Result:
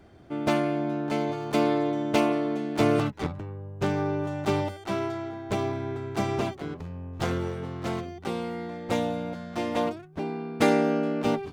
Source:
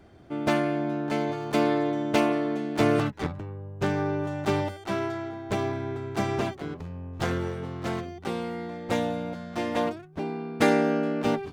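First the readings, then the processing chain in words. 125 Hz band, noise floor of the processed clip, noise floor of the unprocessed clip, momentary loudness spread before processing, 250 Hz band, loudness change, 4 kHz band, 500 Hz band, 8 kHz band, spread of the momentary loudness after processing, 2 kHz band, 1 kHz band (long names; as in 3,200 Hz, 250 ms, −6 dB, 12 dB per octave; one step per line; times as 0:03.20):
0.0 dB, −46 dBFS, −46 dBFS, 10 LU, 0.0 dB, 0.0 dB, 0.0 dB, 0.0 dB, 0.0 dB, 10 LU, −2.0 dB, 0.0 dB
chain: dynamic equaliser 1,700 Hz, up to −5 dB, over −48 dBFS, Q 4.2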